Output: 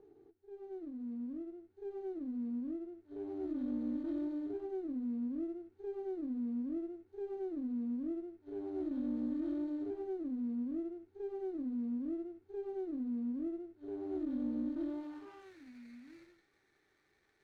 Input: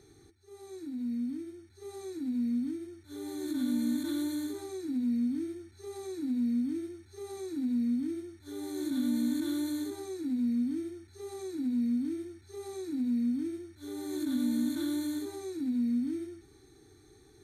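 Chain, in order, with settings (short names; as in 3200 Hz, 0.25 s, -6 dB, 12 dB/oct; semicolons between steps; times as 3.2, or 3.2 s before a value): median filter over 5 samples; band-pass sweep 450 Hz -> 2100 Hz, 14.83–15.57; running maximum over 9 samples; gain +2.5 dB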